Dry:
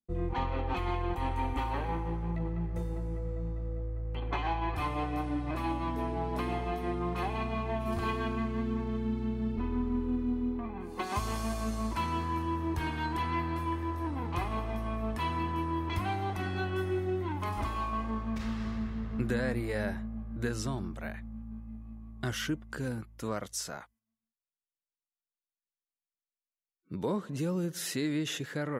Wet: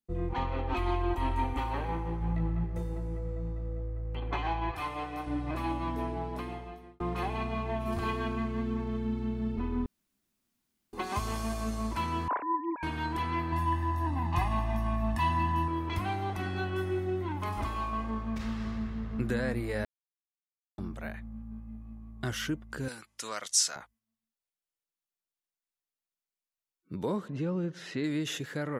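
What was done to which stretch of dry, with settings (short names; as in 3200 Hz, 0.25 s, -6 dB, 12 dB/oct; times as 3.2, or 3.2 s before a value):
0.72–1.44 comb 3.1 ms
2.19–2.64 doubler 19 ms -4 dB
4.71–5.27 low shelf 350 Hz -10.5 dB
6.01–7 fade out
9.86–10.93 room tone
12.28–12.83 sine-wave speech
13.52–15.68 comb 1.1 ms, depth 91%
19.85–20.78 mute
22.88–23.76 weighting filter ITU-R 468
27.28–28.04 LPF 3000 Hz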